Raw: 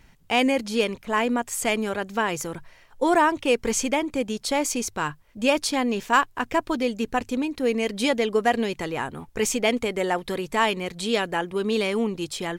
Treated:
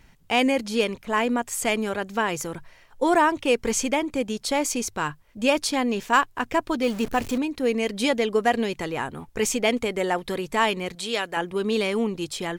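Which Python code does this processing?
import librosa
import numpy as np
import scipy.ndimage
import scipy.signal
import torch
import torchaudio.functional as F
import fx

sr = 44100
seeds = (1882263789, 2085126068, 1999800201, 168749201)

y = fx.zero_step(x, sr, step_db=-31.5, at=(6.83, 7.38))
y = fx.low_shelf(y, sr, hz=390.0, db=-11.0, at=(10.95, 11.37))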